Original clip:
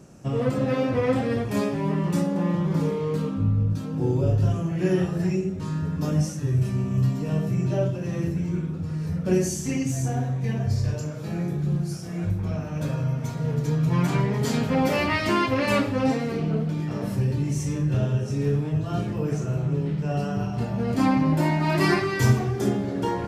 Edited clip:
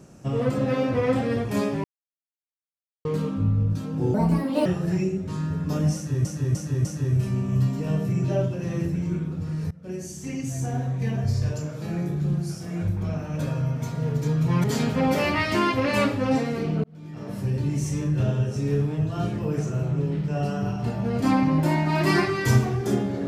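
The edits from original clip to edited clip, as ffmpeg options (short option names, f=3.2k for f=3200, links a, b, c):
-filter_complex "[0:a]asplit=11[a][b][c][d][e][f][g][h][i][j][k];[a]atrim=end=1.84,asetpts=PTS-STARTPTS,afade=t=out:st=1.836:d=0.004:c=hsin[l];[b]atrim=start=1.84:end=3.05,asetpts=PTS-STARTPTS,volume=0[m];[c]atrim=start=3.05:end=4.144,asetpts=PTS-STARTPTS,afade=t=in:d=0.004:c=hsin[n];[d]atrim=start=4.14:end=4.98,asetpts=PTS-STARTPTS,asetrate=71442,aresample=44100[o];[e]atrim=start=4.976:end=6.572[p];[f]atrim=start=6.268:end=6.572[q];[g]atrim=start=6.268:end=6.572[r];[h]atrim=start=6.268:end=9.13,asetpts=PTS-STARTPTS,afade=t=out:st=2.858:d=0.004:c=hsin:silence=0.0749894[s];[i]atrim=start=9.13:end=14.062,asetpts=PTS-STARTPTS,afade=t=in:d=1.25:silence=0.0749894[t];[j]atrim=start=14.378:end=16.58,asetpts=PTS-STARTPTS,afade=t=out:st=2.198:d=0.004:c=hsin[u];[k]atrim=start=16.58,asetpts=PTS-STARTPTS,afade=t=in:d=0.84[v];[l][m][n]concat=n=3:v=0:a=1[w];[w][o]acrossfade=d=0.004:c1=hsin:c2=hsin[x];[x][p]acrossfade=d=0.004:c1=hsin:c2=hsin[y];[y][q]acrossfade=d=0.004:c1=hsin:c2=hsin[z];[z][r]acrossfade=d=0.004:c1=hsin:c2=hsin[aa];[s][t]concat=n=2:v=0:a=1[ab];[aa][ab]acrossfade=d=0.004:c1=hsin:c2=hsin[ac];[u][v]concat=n=2:v=0:a=1[ad];[ac][ad]acrossfade=d=0.004:c1=hsin:c2=hsin"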